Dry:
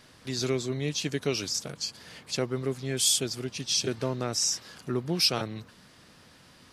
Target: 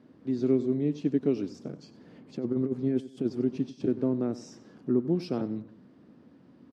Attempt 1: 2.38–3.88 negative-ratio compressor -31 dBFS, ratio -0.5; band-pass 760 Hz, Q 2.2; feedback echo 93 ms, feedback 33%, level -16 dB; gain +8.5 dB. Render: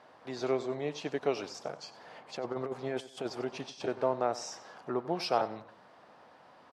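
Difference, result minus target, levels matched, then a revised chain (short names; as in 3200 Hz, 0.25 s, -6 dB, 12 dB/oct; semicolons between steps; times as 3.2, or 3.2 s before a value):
1000 Hz band +19.5 dB
2.38–3.88 negative-ratio compressor -31 dBFS, ratio -0.5; band-pass 270 Hz, Q 2.2; feedback echo 93 ms, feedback 33%, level -16 dB; gain +8.5 dB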